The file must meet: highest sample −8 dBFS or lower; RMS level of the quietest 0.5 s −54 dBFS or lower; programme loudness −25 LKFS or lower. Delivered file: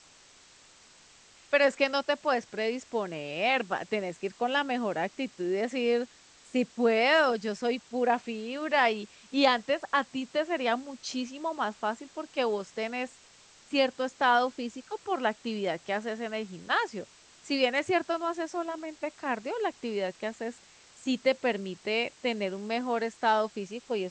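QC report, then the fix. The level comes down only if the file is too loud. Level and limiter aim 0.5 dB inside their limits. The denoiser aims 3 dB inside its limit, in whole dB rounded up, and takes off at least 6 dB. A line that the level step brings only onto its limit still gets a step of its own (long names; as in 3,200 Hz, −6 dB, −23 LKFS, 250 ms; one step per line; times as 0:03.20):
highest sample −9.5 dBFS: in spec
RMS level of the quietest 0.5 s −57 dBFS: in spec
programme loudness −30.0 LKFS: in spec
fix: no processing needed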